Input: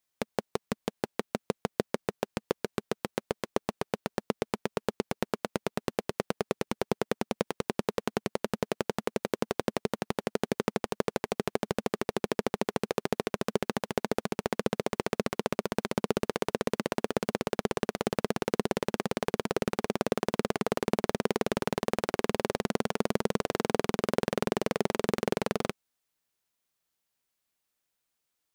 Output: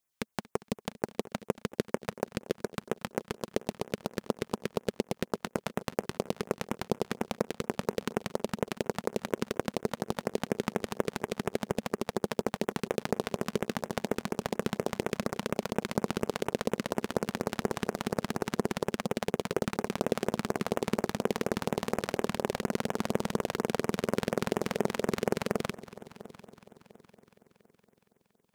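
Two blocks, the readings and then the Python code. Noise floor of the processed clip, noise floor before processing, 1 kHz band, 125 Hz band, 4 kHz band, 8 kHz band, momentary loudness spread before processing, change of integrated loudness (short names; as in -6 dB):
-73 dBFS, -83 dBFS, -2.0 dB, 0.0 dB, -1.5 dB, -0.5 dB, 5 LU, -1.5 dB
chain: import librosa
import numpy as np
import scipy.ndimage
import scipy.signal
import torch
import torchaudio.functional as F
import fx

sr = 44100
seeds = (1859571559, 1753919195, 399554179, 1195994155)

y = fx.echo_heads(x, sr, ms=233, heads='first and third', feedback_pct=55, wet_db=-20.0)
y = fx.filter_lfo_notch(y, sr, shape='sine', hz=4.2, low_hz=340.0, high_hz=4600.0, q=0.99)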